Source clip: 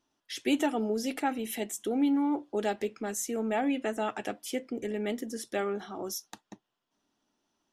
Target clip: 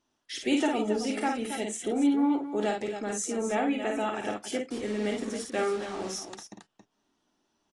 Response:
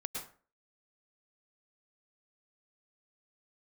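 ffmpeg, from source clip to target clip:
-filter_complex "[0:a]asettb=1/sr,asplit=3[link_01][link_02][link_03];[link_01]atrim=end=4.714[link_04];[link_02]atrim=start=4.71:end=6.48,asetpts=PTS-STARTPTS,afade=type=in:duration=0.004:curve=qsin,afade=type=out:start_time=1.766:duration=0.004:curve=qsin,acrusher=bits=6:mix=0:aa=0.5[link_05];[link_03]atrim=start=6.476[link_06];[link_04][link_05]acrossfade=duration=0.004:curve1=hsin:curve2=qsin[link_07];[link_07][link_06]acrossfade=duration=0.004:curve1=qsin:curve2=hsin,asplit=2[link_08][link_09];[link_09]aecho=0:1:52.48|274.1:0.631|0.355[link_10];[link_08][link_10]amix=inputs=2:normalize=0" -ar 22050 -c:a aac -b:a 32k

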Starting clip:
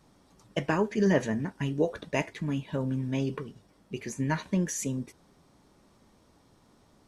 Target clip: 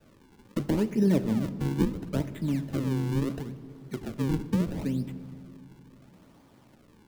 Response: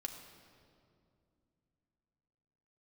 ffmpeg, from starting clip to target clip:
-filter_complex "[0:a]highpass=90,highshelf=frequency=9100:gain=-9.5,acrusher=samples=40:mix=1:aa=0.000001:lfo=1:lforange=64:lforate=0.74,acrossover=split=380[link_01][link_02];[link_02]acompressor=threshold=-53dB:ratio=2[link_03];[link_01][link_03]amix=inputs=2:normalize=0,asplit=2[link_04][link_05];[1:a]atrim=start_sample=2205[link_06];[link_05][link_06]afir=irnorm=-1:irlink=0,volume=-1dB[link_07];[link_04][link_07]amix=inputs=2:normalize=0"

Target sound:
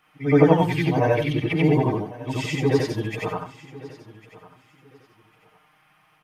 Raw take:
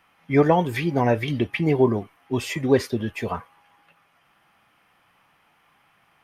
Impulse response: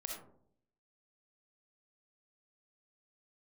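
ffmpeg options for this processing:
-filter_complex "[0:a]afftfilt=real='re':imag='-im':win_size=8192:overlap=0.75,aecho=1:1:6.5:0.97,acrossover=split=7400[link_01][link_02];[link_02]acompressor=threshold=-55dB:ratio=4:attack=1:release=60[link_03];[link_01][link_03]amix=inputs=2:normalize=0,asplit=2[link_04][link_05];[link_05]aecho=0:1:1101|2202:0.112|0.0247[link_06];[link_04][link_06]amix=inputs=2:normalize=0,volume=2.5dB"

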